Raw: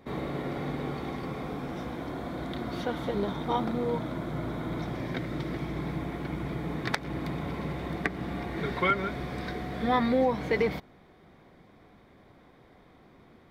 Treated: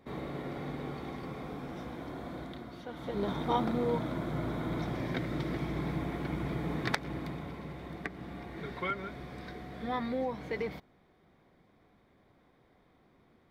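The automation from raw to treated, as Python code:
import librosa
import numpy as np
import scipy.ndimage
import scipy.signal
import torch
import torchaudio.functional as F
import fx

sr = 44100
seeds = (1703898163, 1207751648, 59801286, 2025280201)

y = fx.gain(x, sr, db=fx.line((2.36, -5.5), (2.82, -13.5), (3.31, -1.0), (6.87, -1.0), (7.61, -9.0)))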